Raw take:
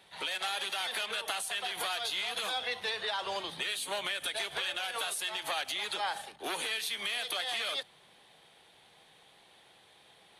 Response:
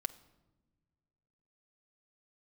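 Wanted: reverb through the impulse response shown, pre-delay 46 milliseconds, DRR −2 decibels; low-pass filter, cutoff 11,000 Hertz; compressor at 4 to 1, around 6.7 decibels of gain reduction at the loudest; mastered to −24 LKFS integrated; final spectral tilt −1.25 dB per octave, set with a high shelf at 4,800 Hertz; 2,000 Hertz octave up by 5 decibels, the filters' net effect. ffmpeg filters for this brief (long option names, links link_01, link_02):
-filter_complex "[0:a]lowpass=11000,equalizer=frequency=2000:width_type=o:gain=5.5,highshelf=frequency=4800:gain=4.5,acompressor=threshold=-35dB:ratio=4,asplit=2[link_01][link_02];[1:a]atrim=start_sample=2205,adelay=46[link_03];[link_02][link_03]afir=irnorm=-1:irlink=0,volume=2.5dB[link_04];[link_01][link_04]amix=inputs=2:normalize=0,volume=8dB"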